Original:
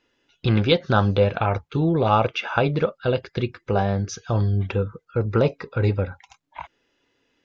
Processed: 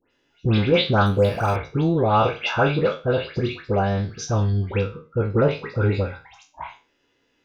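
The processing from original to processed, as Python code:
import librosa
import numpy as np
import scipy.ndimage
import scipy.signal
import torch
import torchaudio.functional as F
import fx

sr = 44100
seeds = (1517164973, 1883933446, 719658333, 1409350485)

y = fx.spec_trails(x, sr, decay_s=0.32)
y = fx.lowpass(y, sr, hz=5200.0, slope=12, at=(4.33, 5.65))
y = fx.dispersion(y, sr, late='highs', ms=114.0, hz=2100.0)
y = fx.resample_linear(y, sr, factor=6, at=(1.06, 1.56))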